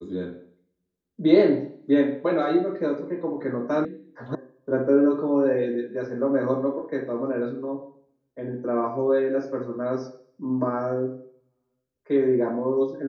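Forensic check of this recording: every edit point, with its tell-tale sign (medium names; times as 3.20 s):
3.85 s: sound stops dead
4.35 s: sound stops dead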